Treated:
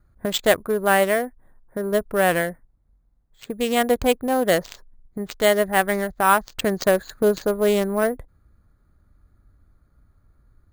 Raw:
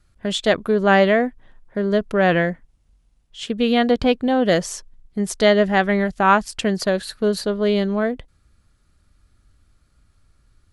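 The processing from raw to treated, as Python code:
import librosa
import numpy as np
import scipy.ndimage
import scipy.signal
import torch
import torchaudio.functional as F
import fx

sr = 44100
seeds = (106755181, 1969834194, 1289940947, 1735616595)

y = fx.wiener(x, sr, points=15)
y = fx.dynamic_eq(y, sr, hz=210.0, q=0.95, threshold_db=-32.0, ratio=4.0, max_db=-7)
y = fx.rider(y, sr, range_db=3, speed_s=0.5)
y = 10.0 ** (-9.0 / 20.0) * np.tanh(y / 10.0 ** (-9.0 / 20.0))
y = fx.cheby_harmonics(y, sr, harmonics=(3, 7), levels_db=(-20, -35), full_scale_db=-9.5)
y = np.repeat(y[::4], 4)[:len(y)]
y = y * librosa.db_to_amplitude(4.0)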